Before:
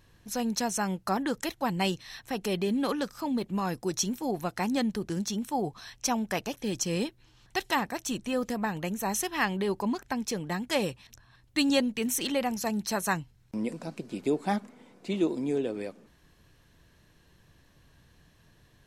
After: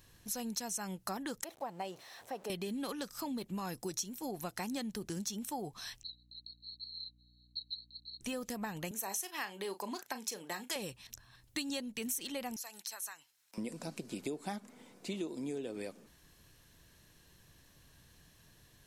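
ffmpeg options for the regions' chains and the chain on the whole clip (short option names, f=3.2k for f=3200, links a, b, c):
-filter_complex "[0:a]asettb=1/sr,asplit=3[a][b][c];[a]atrim=end=1.444[d];[b]atrim=start=1.44:end=2.5,asetpts=PTS-STARTPTS,afade=t=in:d=0.004:c=qsin,afade=t=out:st=1.056:d=0.004:c=qsin,aeval=exprs='val(0)+0.5*0.0106*sgn(val(0))':c=same,bandpass=f=650:t=q:w=1.7,aemphasis=mode=production:type=50kf[e];[c]atrim=start=2.496[f];[d][e]acrossfade=d=0.004:c1=hsin:c2=qsin[g];[g][f]acrossfade=d=0.004:c1=qsin:c2=hsin,asettb=1/sr,asplit=3[h][i][j];[h]atrim=end=6.034[k];[i]atrim=start=6.03:end=8.21,asetpts=PTS-STARTPTS,afade=t=in:d=0.004:c=qsin,afade=t=out:st=2.176:d=0.004:c=qsin,asuperpass=centerf=4100:order=20:qfactor=6.7,aeval=exprs='val(0)+0.000794*(sin(2*PI*60*n/s)+sin(2*PI*2*60*n/s)/2+sin(2*PI*3*60*n/s)/3+sin(2*PI*4*60*n/s)/4+sin(2*PI*5*60*n/s)/5)':c=same[l];[j]atrim=start=8.206[m];[k][l]acrossfade=d=0.004:c1=hsin:c2=qsin[n];[n][m]acrossfade=d=0.004:c1=qsin:c2=hsin,asettb=1/sr,asplit=3[o][p][q];[o]atrim=end=8.914[r];[p]atrim=start=8.91:end=10.76,asetpts=PTS-STARTPTS,afade=t=in:d=0.004:c=qsin,afade=t=out:st=1.846:d=0.004:c=qsin,highpass=360,asplit=2[s][t];[t]adelay=36,volume=-12dB[u];[s][u]amix=inputs=2:normalize=0,atrim=end_sample=81585[v];[q]atrim=start=10.756[w];[r][v]acrossfade=d=0.004:c1=hsin:c2=qsin[x];[x][w]acrossfade=d=0.004:c1=qsin:c2=hsin,asettb=1/sr,asplit=3[y][z][aa];[y]atrim=end=12.564[ab];[z]atrim=start=12.56:end=13.58,asetpts=PTS-STARTPTS,afade=t=in:d=0.004:c=qsin,afade=t=out:st=1.016:d=0.004:c=qsin,highpass=990,acompressor=threshold=-42dB:ratio=5:attack=3.2:release=140:knee=1:detection=peak[ac];[aa]atrim=start=13.576[ad];[ab][ac]acrossfade=d=0.004:c1=hsin:c2=qsin[ae];[ae][ad]acrossfade=d=0.004:c1=qsin:c2=hsin,highshelf=f=4.5k:g=12,acompressor=threshold=-33dB:ratio=5,volume=-3.5dB"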